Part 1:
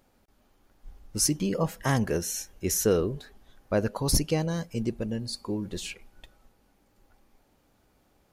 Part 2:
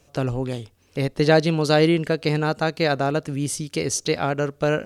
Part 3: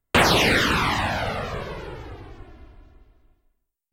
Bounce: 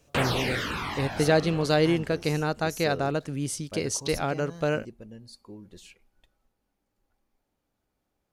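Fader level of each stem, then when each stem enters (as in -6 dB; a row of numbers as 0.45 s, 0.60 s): -13.5 dB, -5.0 dB, -10.5 dB; 0.00 s, 0.00 s, 0.00 s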